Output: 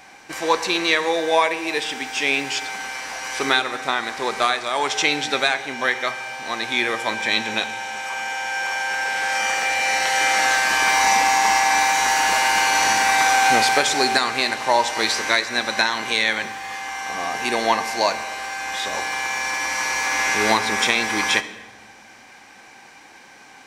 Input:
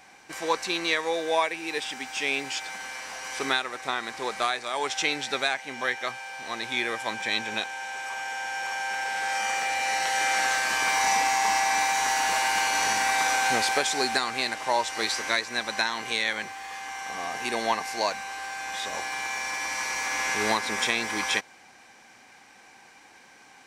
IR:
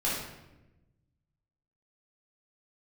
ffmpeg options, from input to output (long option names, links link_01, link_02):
-filter_complex "[0:a]equalizer=frequency=8700:width=1.5:gain=-2.5,asplit=2[link_01][link_02];[1:a]atrim=start_sample=2205,asetrate=32193,aresample=44100[link_03];[link_02][link_03]afir=irnorm=-1:irlink=0,volume=-21dB[link_04];[link_01][link_04]amix=inputs=2:normalize=0,volume=6dB"